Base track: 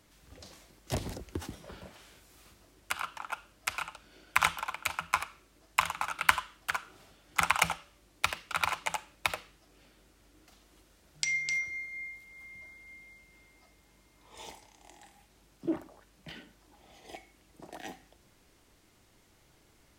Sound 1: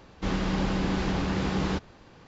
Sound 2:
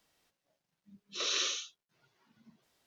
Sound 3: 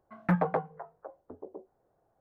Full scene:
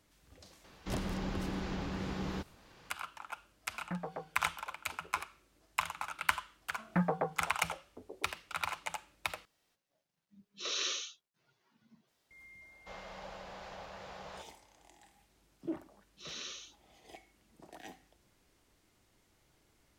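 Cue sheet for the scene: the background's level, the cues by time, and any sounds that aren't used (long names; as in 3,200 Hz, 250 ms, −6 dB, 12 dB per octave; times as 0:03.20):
base track −6.5 dB
0:00.64: mix in 1 −10.5 dB + one half of a high-frequency compander encoder only
0:03.62: mix in 3 −13.5 dB
0:06.67: mix in 3 −4.5 dB
0:09.45: overwrite with 2 −3 dB
0:12.64: mix in 1 −16.5 dB, fades 0.10 s + low shelf with overshoot 430 Hz −11 dB, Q 3
0:15.05: mix in 2 −12 dB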